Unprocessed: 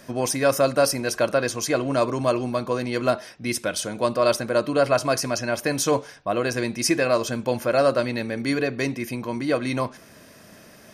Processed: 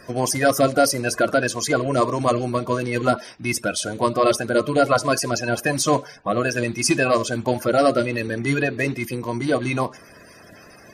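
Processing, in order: bin magnitudes rounded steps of 30 dB; gain +3 dB

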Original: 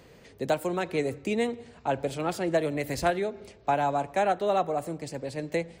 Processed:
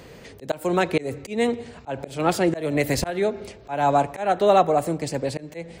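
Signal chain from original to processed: auto swell 0.233 s; gain +9 dB

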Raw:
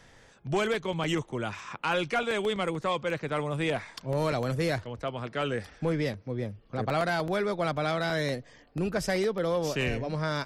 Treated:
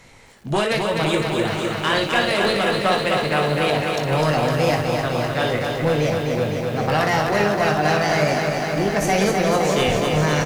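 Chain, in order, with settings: formant shift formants +3 st; early reflections 20 ms -8 dB, 59 ms -8 dB; lo-fi delay 0.254 s, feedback 80%, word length 9-bit, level -4.5 dB; gain +6.5 dB

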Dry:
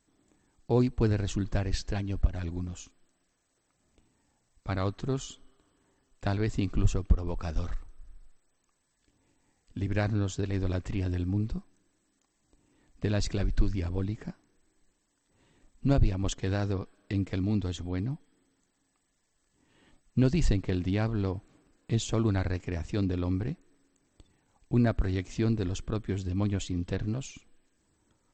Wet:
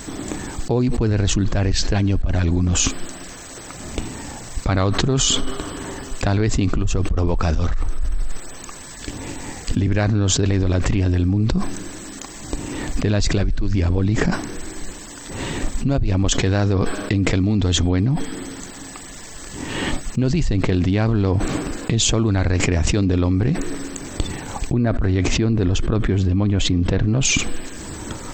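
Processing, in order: 24.73–27.25 LPF 2500 Hz 6 dB/oct; fast leveller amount 100%; gain -1 dB

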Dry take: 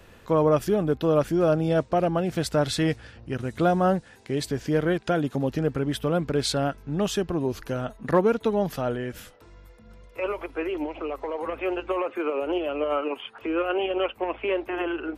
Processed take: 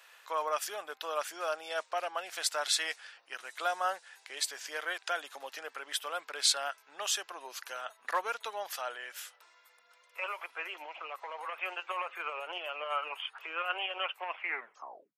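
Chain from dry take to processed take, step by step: tape stop at the end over 0.82 s; Bessel high-pass 1200 Hz, order 4; dynamic EQ 7600 Hz, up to +4 dB, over -51 dBFS, Q 0.98

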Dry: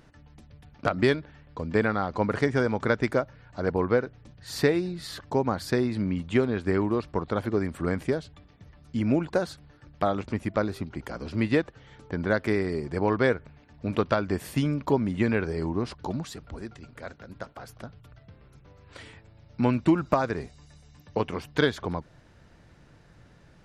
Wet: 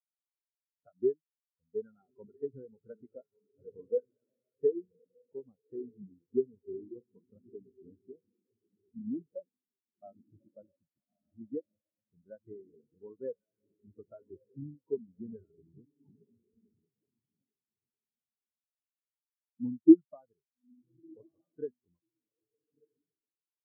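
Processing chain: diffused feedback echo 1.237 s, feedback 46%, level -4.5 dB; spectral expander 4:1

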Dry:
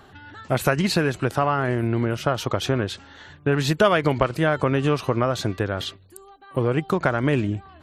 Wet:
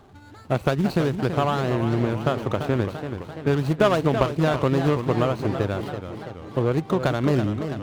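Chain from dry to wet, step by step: median filter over 25 samples; warbling echo 0.335 s, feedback 60%, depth 160 cents, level -9 dB

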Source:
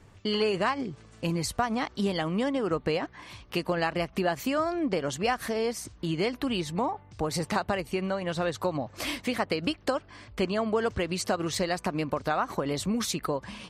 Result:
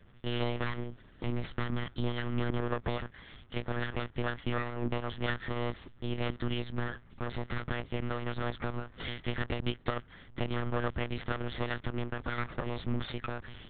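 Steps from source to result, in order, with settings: minimum comb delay 0.58 ms; monotone LPC vocoder at 8 kHz 120 Hz; gain -3 dB

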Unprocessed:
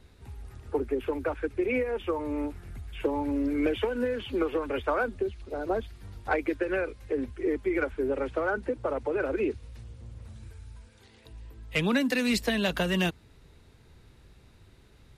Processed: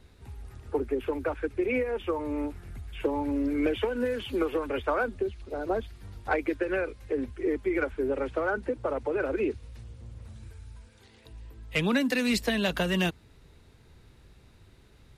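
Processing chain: 4.04–4.66 high shelf 5400 Hz -> 11000 Hz +10.5 dB

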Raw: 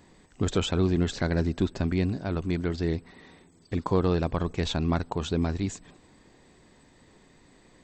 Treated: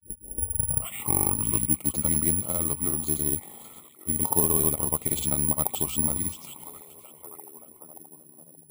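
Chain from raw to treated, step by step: tape start at the beginning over 1.81 s; gate with hold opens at -45 dBFS; HPF 84 Hz 12 dB/oct; bell 1300 Hz +3.5 dB 1 oct; in parallel at 0 dB: compressor, threshold -36 dBFS, peak gain reduction 17.5 dB; on the sum: grains, pitch spread up and down by 0 st; on a send: delay with a stepping band-pass 0.519 s, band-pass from 3100 Hz, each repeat -0.7 oct, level -9 dB; on the sum: varispeed -10%; Butterworth band-stop 1600 Hz, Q 2.2; careless resampling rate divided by 4×, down filtered, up zero stuff; gain -5 dB

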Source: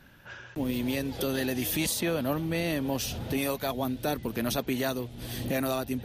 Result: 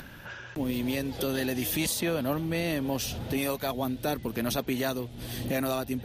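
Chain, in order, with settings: upward compressor, threshold -36 dBFS

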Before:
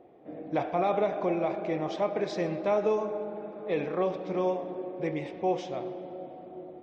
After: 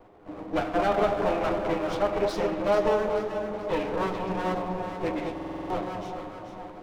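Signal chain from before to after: minimum comb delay 9.8 ms; echo with dull and thin repeats by turns 0.217 s, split 970 Hz, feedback 63%, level -4 dB; stuck buffer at 5.33, samples 2048, times 7; gain +3.5 dB

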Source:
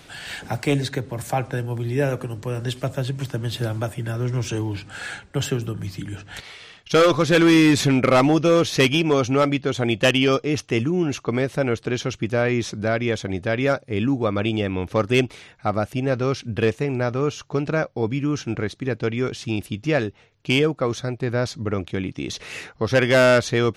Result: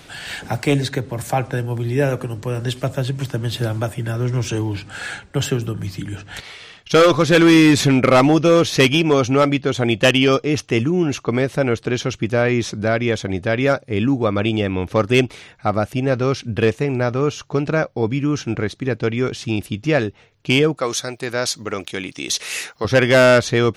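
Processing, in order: 20.77–22.85 RIAA curve recording; gain +3.5 dB

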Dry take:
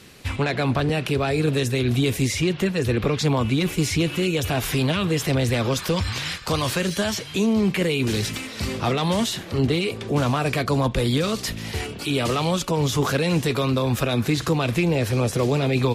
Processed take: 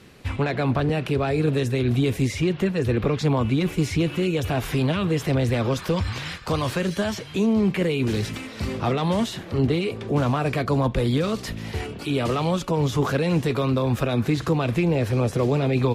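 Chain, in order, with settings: high shelf 2700 Hz -9.5 dB

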